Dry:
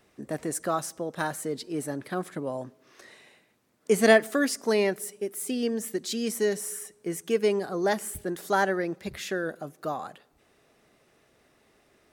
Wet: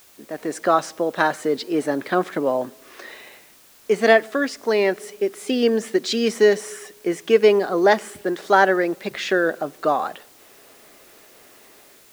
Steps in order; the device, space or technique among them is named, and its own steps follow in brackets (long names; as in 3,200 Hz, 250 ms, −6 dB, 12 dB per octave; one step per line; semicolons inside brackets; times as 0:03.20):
dictaphone (band-pass filter 280–4,300 Hz; automatic gain control gain up to 13.5 dB; tape wow and flutter 22 cents; white noise bed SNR 30 dB)
level −1 dB